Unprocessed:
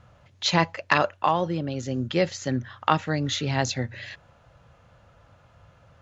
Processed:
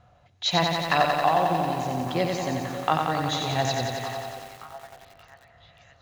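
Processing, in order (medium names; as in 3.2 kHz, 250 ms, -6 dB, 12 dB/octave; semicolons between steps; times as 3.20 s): small resonant body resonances 720/3900 Hz, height 14 dB, ringing for 60 ms; on a send: repeats whose band climbs or falls 578 ms, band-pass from 550 Hz, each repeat 0.7 oct, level -11 dB; on the sum: spring tank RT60 3.9 s, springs 50 ms, chirp 70 ms, DRR 13.5 dB; bit-crushed delay 90 ms, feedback 80%, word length 7-bit, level -4 dB; trim -4.5 dB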